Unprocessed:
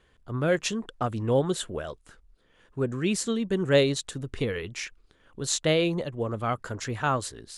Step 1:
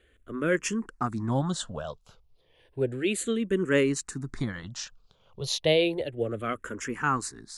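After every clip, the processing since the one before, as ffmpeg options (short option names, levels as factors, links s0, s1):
-filter_complex "[0:a]asplit=2[s0][s1];[s1]afreqshift=-0.32[s2];[s0][s2]amix=inputs=2:normalize=1,volume=1.26"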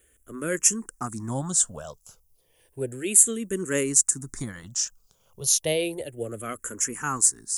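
-af "aexciter=amount=10.9:drive=6.6:freq=5900,volume=0.708"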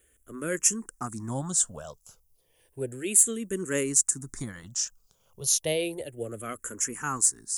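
-af "asoftclip=type=tanh:threshold=0.708,volume=0.75"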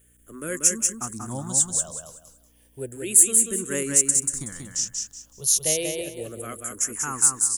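-af "aeval=exprs='val(0)+0.001*(sin(2*PI*60*n/s)+sin(2*PI*2*60*n/s)/2+sin(2*PI*3*60*n/s)/3+sin(2*PI*4*60*n/s)/4+sin(2*PI*5*60*n/s)/5)':c=same,crystalizer=i=1:c=0,aecho=1:1:187|374|561|748:0.631|0.164|0.0427|0.0111,volume=0.891"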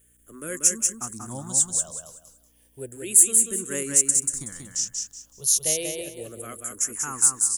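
-af "bass=f=250:g=-1,treble=f=4000:g=3,volume=0.708"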